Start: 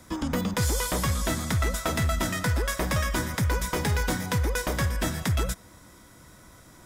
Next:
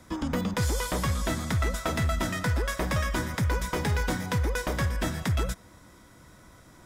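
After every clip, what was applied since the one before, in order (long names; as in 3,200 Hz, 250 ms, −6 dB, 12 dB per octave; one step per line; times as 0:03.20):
high-shelf EQ 6,000 Hz −6.5 dB
level −1 dB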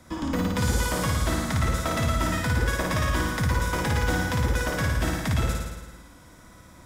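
notch filter 410 Hz, Q 12
on a send: flutter between parallel walls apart 9.5 metres, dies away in 1.2 s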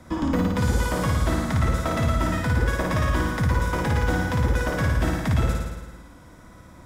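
high-shelf EQ 2,200 Hz −8 dB
speech leveller 0.5 s
level +3 dB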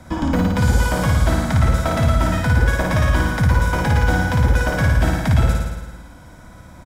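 comb filter 1.3 ms, depth 34%
level +4.5 dB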